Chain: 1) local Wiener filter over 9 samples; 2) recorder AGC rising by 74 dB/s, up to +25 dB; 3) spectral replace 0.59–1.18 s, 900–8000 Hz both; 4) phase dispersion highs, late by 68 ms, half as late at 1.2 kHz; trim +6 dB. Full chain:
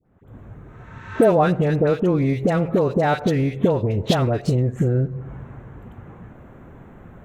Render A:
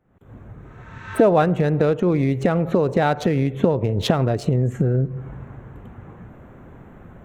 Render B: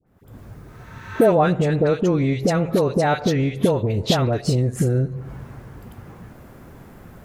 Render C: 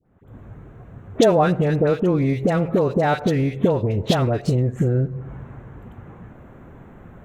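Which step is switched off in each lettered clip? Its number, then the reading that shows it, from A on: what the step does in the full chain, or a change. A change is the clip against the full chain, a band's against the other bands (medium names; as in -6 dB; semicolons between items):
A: 4, crest factor change +2.0 dB; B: 1, 8 kHz band +7.5 dB; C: 3, 8 kHz band +3.0 dB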